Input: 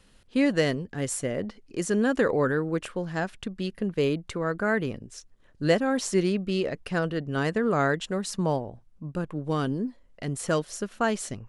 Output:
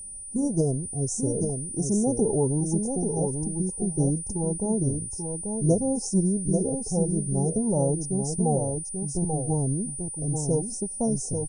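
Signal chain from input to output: Chebyshev band-stop 1000–6200 Hz, order 5; low shelf 140 Hz +9 dB; formant shift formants -3 st; whine 9300 Hz -37 dBFS; echo 0.837 s -5.5 dB

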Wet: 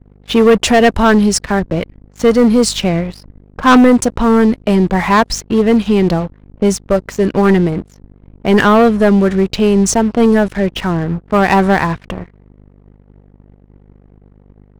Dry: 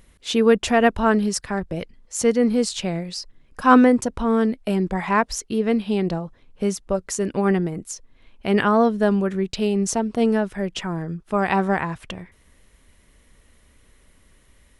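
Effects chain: low-pass opened by the level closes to 800 Hz, open at -17 dBFS; hum 50 Hz, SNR 22 dB; sample leveller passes 3

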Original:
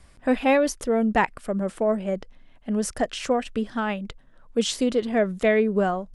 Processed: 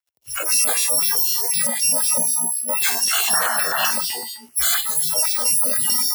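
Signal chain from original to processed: FFT order left unsorted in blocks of 128 samples; transient shaper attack -3 dB, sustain +6 dB; resonator 64 Hz, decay 2 s, harmonics all, mix 80%; LFO high-pass sine 4 Hz 360–3600 Hz; in parallel at -3.5 dB: fuzz box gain 56 dB, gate -59 dBFS; on the sum: frequency shift +42 Hz; painted sound noise, 3.27–3.91, 560–1900 Hz -24 dBFS; spectral noise reduction 24 dB; stepped notch 7.8 Hz 220–5800 Hz; gain +1 dB

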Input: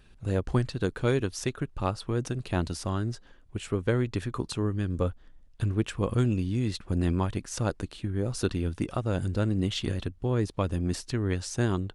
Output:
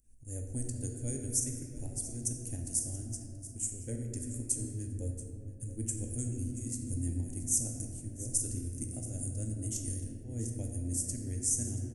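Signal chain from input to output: EQ curve 110 Hz 0 dB, 230 Hz +8 dB, 380 Hz -14 dB, 710 Hz -11 dB, 1200 Hz -23 dB, 1900 Hz -14 dB, 3900 Hz -29 dB, 6400 Hz +6 dB, 9100 Hz +13 dB, 13000 Hz +10 dB; pump 129 bpm, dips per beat 2, -12 dB, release 0.162 s; high shelf 2300 Hz +9.5 dB; fixed phaser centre 460 Hz, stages 4; echo 0.68 s -15.5 dB; on a send at -1 dB: reverb RT60 2.8 s, pre-delay 4 ms; on the sum: mismatched tape noise reduction decoder only; gain -6.5 dB

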